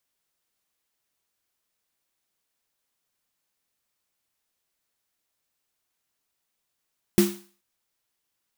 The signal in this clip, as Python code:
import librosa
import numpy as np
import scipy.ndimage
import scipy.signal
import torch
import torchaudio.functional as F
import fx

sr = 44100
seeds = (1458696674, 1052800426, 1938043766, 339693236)

y = fx.drum_snare(sr, seeds[0], length_s=0.43, hz=200.0, second_hz=350.0, noise_db=-9.5, noise_from_hz=600.0, decay_s=0.35, noise_decay_s=0.44)